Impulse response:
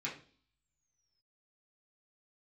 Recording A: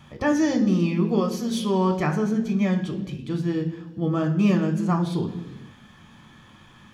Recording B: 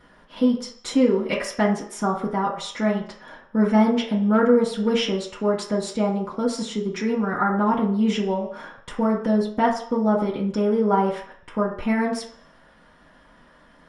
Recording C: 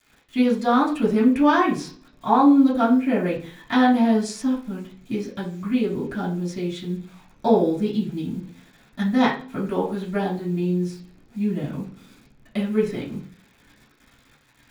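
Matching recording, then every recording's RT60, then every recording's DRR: C; non-exponential decay, 0.60 s, non-exponential decay; 3.0, −7.0, −7.0 decibels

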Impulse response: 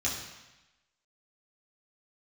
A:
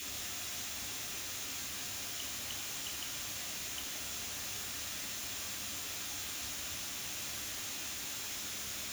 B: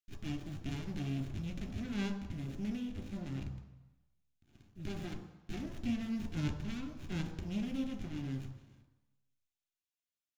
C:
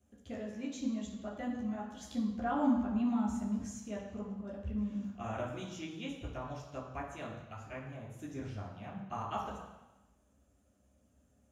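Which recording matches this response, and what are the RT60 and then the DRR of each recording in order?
C; 1.0, 1.0, 1.0 seconds; −1.5, 6.0, −6.5 decibels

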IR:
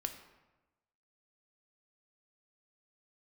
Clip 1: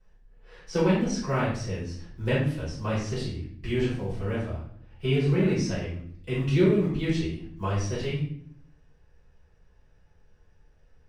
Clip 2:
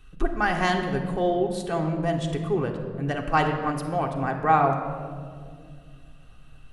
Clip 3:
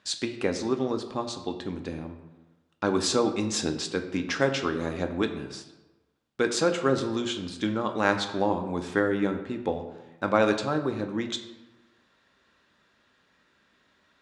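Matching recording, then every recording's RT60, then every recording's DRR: 3; 0.60, 2.2, 1.1 seconds; −12.0, 1.5, 5.5 decibels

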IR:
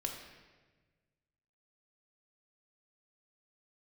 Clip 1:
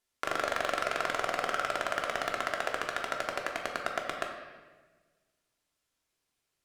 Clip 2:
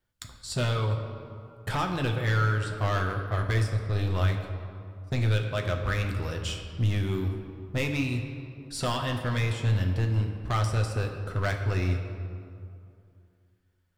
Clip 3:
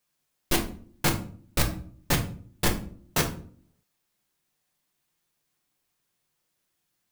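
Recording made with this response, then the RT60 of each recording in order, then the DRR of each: 1; 1.3, 2.6, 0.50 seconds; 1.0, 2.0, 1.5 decibels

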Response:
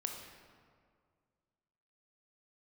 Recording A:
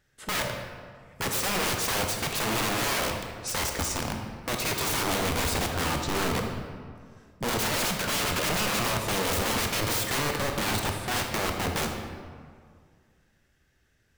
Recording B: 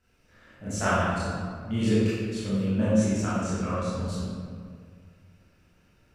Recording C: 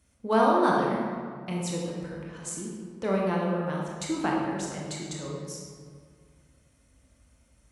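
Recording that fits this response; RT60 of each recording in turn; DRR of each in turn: A; 2.0, 2.0, 2.0 seconds; 2.5, −12.0, −3.0 decibels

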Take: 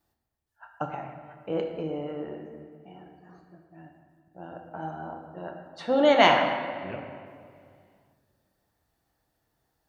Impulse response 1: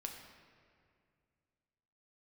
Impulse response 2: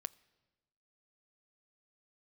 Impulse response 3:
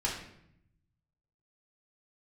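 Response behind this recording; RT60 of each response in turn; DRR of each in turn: 1; 2.2, 1.2, 0.75 seconds; 2.0, 15.5, −4.5 decibels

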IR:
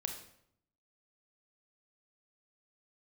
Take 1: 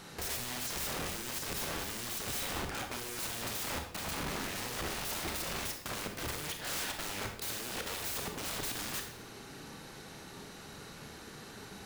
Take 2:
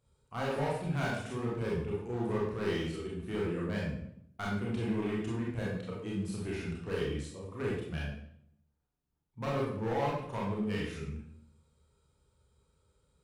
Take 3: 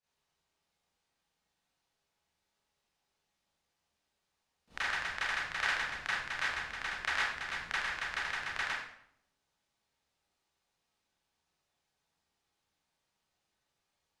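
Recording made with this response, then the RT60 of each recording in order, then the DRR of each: 1; 0.70, 0.70, 0.70 seconds; 4.0, −5.0, −12.0 decibels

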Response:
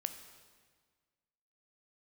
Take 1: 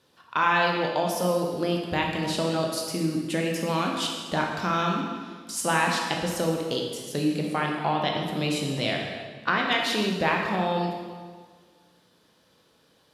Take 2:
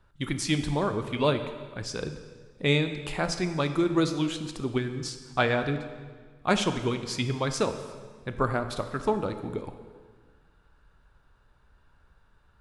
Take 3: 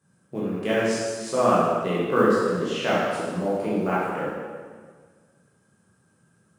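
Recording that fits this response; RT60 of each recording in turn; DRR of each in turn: 2; 1.6, 1.6, 1.6 seconds; −0.5, 8.0, −8.5 decibels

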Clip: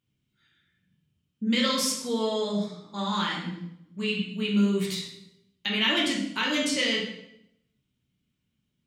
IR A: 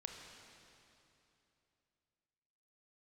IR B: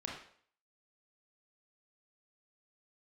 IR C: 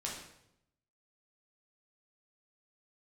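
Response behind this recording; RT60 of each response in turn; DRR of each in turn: C; 3.0, 0.55, 0.80 seconds; 2.5, −2.0, −3.5 decibels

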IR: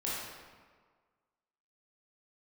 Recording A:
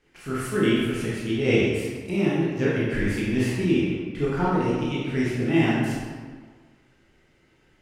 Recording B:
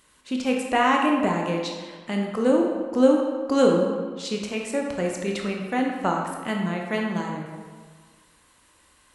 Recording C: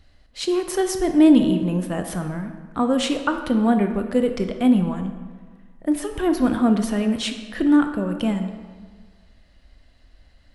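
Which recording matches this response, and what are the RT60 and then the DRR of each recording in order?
A; 1.6, 1.6, 1.6 seconds; −7.5, 0.0, 6.5 decibels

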